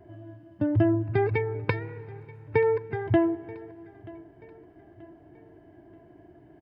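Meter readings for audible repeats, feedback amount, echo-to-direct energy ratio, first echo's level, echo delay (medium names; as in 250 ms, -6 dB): 2, 42%, -20.5 dB, -21.5 dB, 932 ms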